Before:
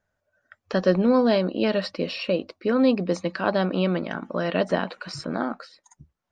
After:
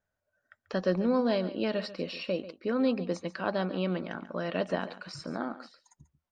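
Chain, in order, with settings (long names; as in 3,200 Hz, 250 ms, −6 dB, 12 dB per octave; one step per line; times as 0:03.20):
single-tap delay 140 ms −15 dB
level −7.5 dB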